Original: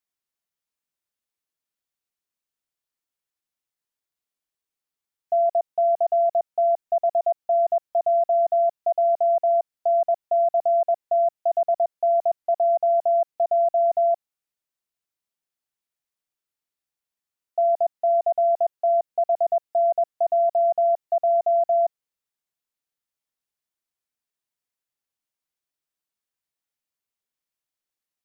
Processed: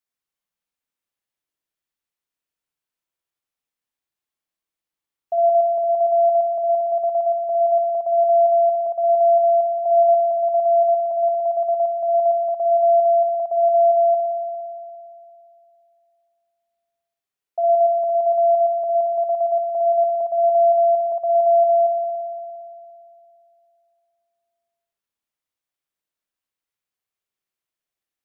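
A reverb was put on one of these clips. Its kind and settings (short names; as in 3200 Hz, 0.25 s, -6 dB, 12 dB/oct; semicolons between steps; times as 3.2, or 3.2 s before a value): spring tank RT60 2.6 s, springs 57 ms, chirp 35 ms, DRR -1 dB; gain -1.5 dB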